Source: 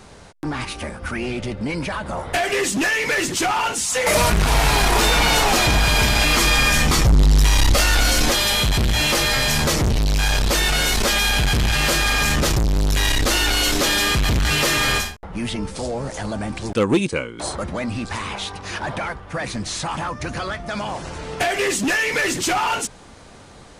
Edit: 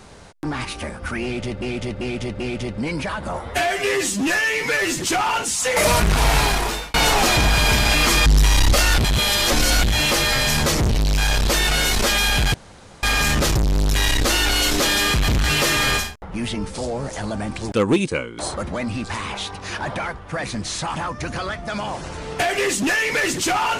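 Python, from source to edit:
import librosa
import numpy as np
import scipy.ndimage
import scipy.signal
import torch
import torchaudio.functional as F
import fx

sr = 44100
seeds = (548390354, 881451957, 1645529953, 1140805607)

y = fx.edit(x, sr, fx.repeat(start_s=1.23, length_s=0.39, count=4),
    fx.stretch_span(start_s=2.24, length_s=1.06, factor=1.5),
    fx.fade_out_span(start_s=4.68, length_s=0.56),
    fx.cut(start_s=6.56, length_s=0.71),
    fx.reverse_span(start_s=7.99, length_s=0.85),
    fx.room_tone_fill(start_s=11.55, length_s=0.49), tone=tone)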